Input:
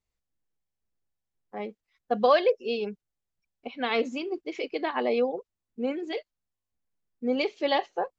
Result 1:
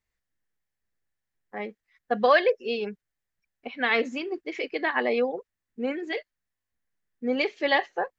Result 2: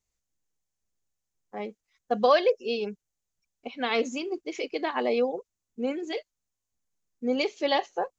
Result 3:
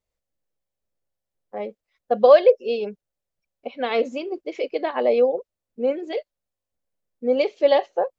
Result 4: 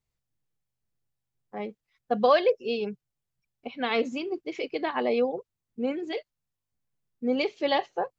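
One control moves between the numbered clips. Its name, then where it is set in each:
bell, frequency: 1800, 6600, 560, 130 Hz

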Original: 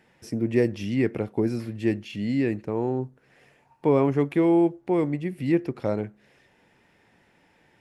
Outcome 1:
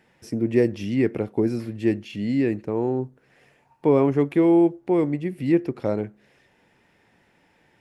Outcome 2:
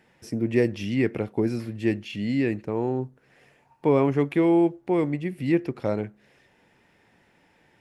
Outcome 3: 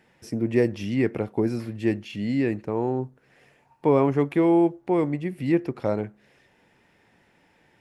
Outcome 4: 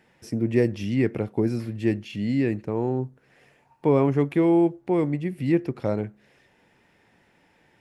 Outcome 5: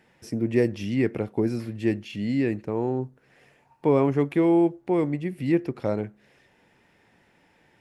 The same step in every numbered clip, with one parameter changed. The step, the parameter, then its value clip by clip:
dynamic EQ, frequency: 350, 2700, 940, 120, 9900 Hz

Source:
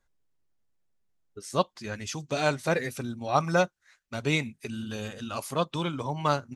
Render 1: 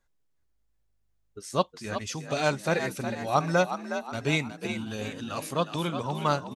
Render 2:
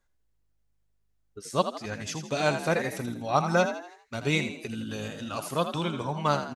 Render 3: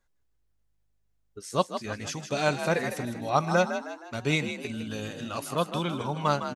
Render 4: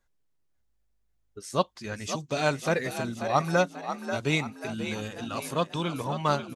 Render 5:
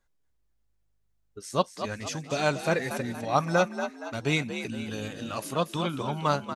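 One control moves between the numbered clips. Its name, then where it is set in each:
frequency-shifting echo, time: 364, 81, 157, 538, 235 ms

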